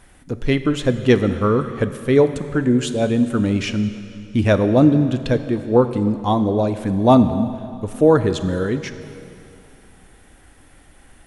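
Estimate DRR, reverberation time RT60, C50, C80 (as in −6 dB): 10.0 dB, 2.7 s, 11.0 dB, 11.5 dB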